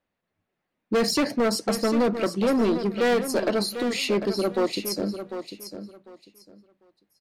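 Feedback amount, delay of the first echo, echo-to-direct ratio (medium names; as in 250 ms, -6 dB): 21%, 748 ms, -10.0 dB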